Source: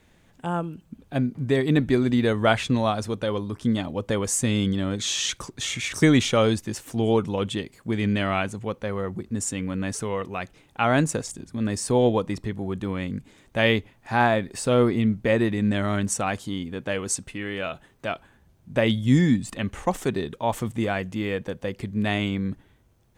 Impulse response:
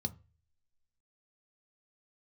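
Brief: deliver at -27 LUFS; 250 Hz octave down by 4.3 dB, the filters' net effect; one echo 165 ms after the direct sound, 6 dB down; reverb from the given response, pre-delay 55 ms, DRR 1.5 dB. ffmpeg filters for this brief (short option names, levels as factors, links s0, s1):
-filter_complex "[0:a]equalizer=f=250:t=o:g=-5.5,aecho=1:1:165:0.501,asplit=2[s0][s1];[1:a]atrim=start_sample=2205,adelay=55[s2];[s1][s2]afir=irnorm=-1:irlink=0,volume=0.841[s3];[s0][s3]amix=inputs=2:normalize=0,volume=0.398"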